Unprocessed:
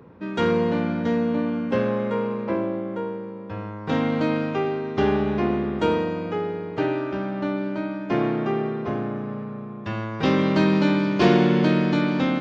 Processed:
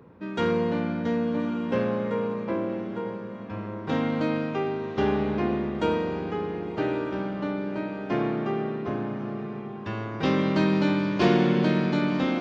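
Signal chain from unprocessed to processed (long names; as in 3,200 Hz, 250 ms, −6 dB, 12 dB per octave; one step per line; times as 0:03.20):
feedback delay with all-pass diffusion 1,106 ms, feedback 40%, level −11.5 dB
level −3.5 dB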